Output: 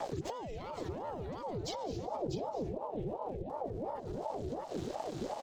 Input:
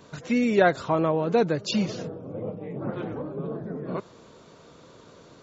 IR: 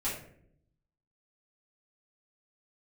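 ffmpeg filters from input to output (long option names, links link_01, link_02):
-filter_complex "[0:a]lowshelf=frequency=250:gain=9.5,aeval=exprs='sgn(val(0))*max(abs(val(0))-0.00282,0)':channel_layout=same,asettb=1/sr,asplit=3[link_01][link_02][link_03];[link_01]atrim=end=2.774[link_04];[link_02]atrim=start=2.77:end=3.5,asetpts=PTS-STARTPTS,afade=type=in:duration=0.004:curve=qsin,afade=type=out:start_time=0.726:duration=0.004:curve=qsin,asplit=3[link_05][link_06][link_07];[link_05]bandpass=frequency=270:width_type=q:width=8,volume=0dB[link_08];[link_06]bandpass=frequency=2290:width_type=q:width=8,volume=-6dB[link_09];[link_07]bandpass=frequency=3010:width_type=q:width=8,volume=-9dB[link_10];[link_08][link_09][link_10]amix=inputs=3:normalize=0[link_11];[link_03]atrim=start=3.496[link_12];[link_04][link_11]acrossfade=duration=0.004:curve1=hsin:curve2=qsin[link_13];[link_13][link_12]acrossfade=duration=0.004:curve1=qsin:curve2=hsin,asplit=2[link_14][link_15];[link_15]aecho=0:1:123|195|643:0.211|0.15|0.299[link_16];[link_14][link_16]amix=inputs=2:normalize=0,asoftclip=type=tanh:threshold=-12dB,equalizer=frequency=74:width=0.66:gain=15,acompressor=threshold=-34dB:ratio=6,alimiter=level_in=12dB:limit=-24dB:level=0:latency=1:release=153,volume=-12dB,acrossover=split=130|3000[link_17][link_18][link_19];[link_18]acompressor=threshold=-57dB:ratio=5[link_20];[link_17][link_20][link_19]amix=inputs=3:normalize=0,aeval=exprs='val(0)*sin(2*PI*490*n/s+490*0.55/2.8*sin(2*PI*2.8*n/s))':channel_layout=same,volume=13.5dB"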